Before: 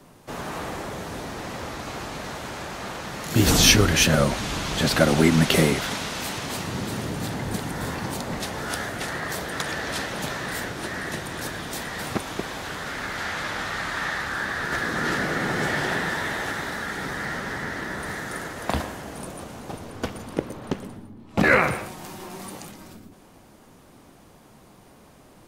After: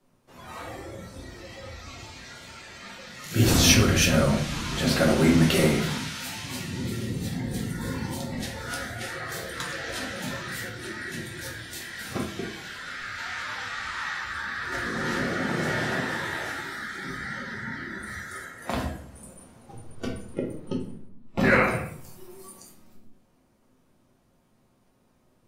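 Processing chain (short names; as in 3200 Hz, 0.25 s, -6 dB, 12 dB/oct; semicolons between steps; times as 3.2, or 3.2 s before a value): spectral noise reduction 13 dB; reverb RT60 0.55 s, pre-delay 6 ms, DRR -1.5 dB; gain -6.5 dB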